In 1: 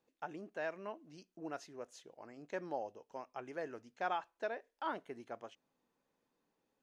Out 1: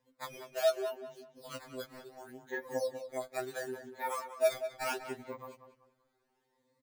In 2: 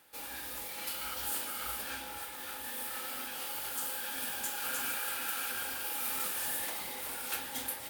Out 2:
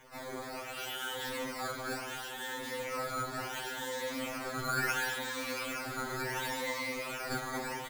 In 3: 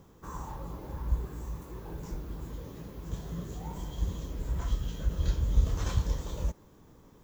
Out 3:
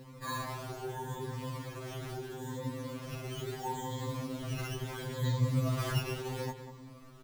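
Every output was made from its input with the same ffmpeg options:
-filter_complex "[0:a]afftfilt=real='re*pow(10,16/40*sin(2*PI*(1*log(max(b,1)*sr/1024/100)/log(2)-(0.76)*(pts-256)/sr)))':imag='im*pow(10,16/40*sin(2*PI*(1*log(max(b,1)*sr/1024/100)/log(2)-(0.76)*(pts-256)/sr)))':win_size=1024:overlap=0.75,acrossover=split=4000[a][b];[b]acompressor=threshold=-48dB:ratio=4:attack=1:release=60[c];[a][c]amix=inputs=2:normalize=0,acrusher=samples=9:mix=1:aa=0.000001:lfo=1:lforange=14.4:lforate=0.7,asplit=2[d][e];[e]adelay=192,lowpass=f=3.3k:p=1,volume=-10dB,asplit=2[f][g];[g]adelay=192,lowpass=f=3.3k:p=1,volume=0.32,asplit=2[h][i];[i]adelay=192,lowpass=f=3.3k:p=1,volume=0.32,asplit=2[j][k];[k]adelay=192,lowpass=f=3.3k:p=1,volume=0.32[l];[d][f][h][j][l]amix=inputs=5:normalize=0,afftfilt=real='re*2.45*eq(mod(b,6),0)':imag='im*2.45*eq(mod(b,6),0)':win_size=2048:overlap=0.75,volume=4dB"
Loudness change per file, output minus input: +7.0, -1.0, -1.5 LU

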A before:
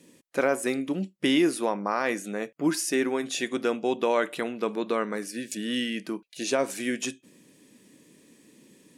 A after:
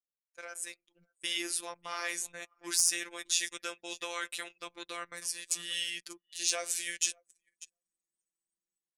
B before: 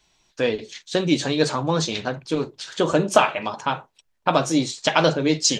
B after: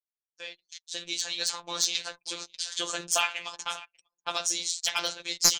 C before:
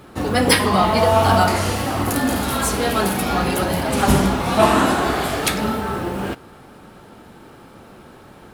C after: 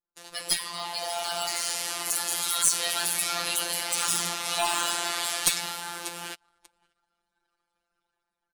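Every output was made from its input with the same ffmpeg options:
-filter_complex "[0:a]lowpass=8.3k,aderivative,asplit=2[a][b];[b]adelay=15,volume=-10dB[c];[a][c]amix=inputs=2:normalize=0,asplit=2[d][e];[e]aecho=0:1:589|1178:0.126|0.0214[f];[d][f]amix=inputs=2:normalize=0,afftfilt=real='hypot(re,im)*cos(PI*b)':imag='0':win_size=1024:overlap=0.75,aeval=exprs='clip(val(0),-1,0.112)':c=same,dynaudnorm=f=200:g=13:m=9dB,highshelf=f=2.9k:g=3,anlmdn=0.1,volume=-1dB"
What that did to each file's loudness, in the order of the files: -5.5, -7.0, -8.0 LU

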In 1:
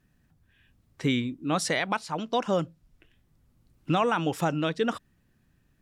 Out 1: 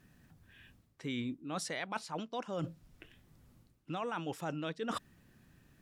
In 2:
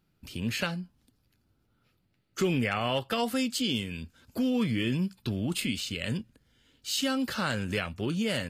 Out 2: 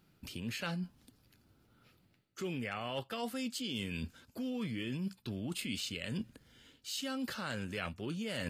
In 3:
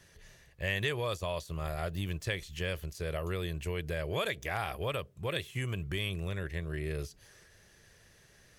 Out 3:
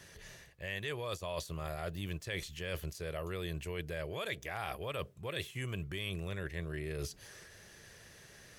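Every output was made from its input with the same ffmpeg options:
-af "lowshelf=f=67:g=-8.5,areverse,acompressor=threshold=-41dB:ratio=10,areverse,volume=5.5dB"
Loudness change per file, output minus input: -11.5, -9.0, -4.5 LU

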